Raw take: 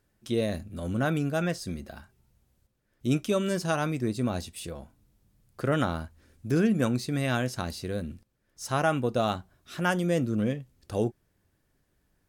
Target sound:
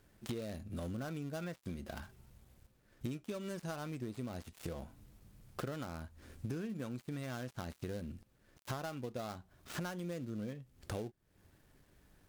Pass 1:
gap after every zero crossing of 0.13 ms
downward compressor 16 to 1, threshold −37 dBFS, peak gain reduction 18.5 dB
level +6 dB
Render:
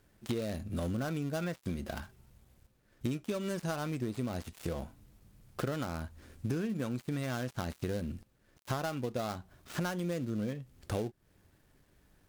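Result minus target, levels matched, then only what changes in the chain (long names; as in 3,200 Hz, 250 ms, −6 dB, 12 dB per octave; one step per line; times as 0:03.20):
downward compressor: peak gain reduction −6.5 dB
change: downward compressor 16 to 1, threshold −44 dBFS, peak gain reduction 25 dB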